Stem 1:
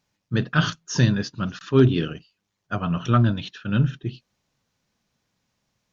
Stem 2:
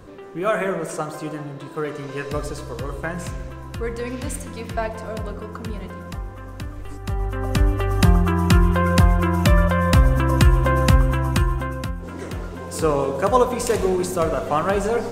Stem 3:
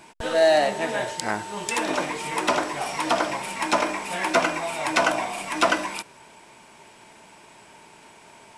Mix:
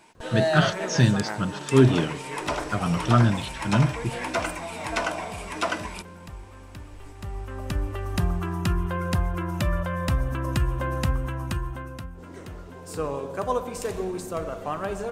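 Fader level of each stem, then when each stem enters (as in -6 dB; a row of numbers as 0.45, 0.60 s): -0.5, -9.5, -6.5 dB; 0.00, 0.15, 0.00 s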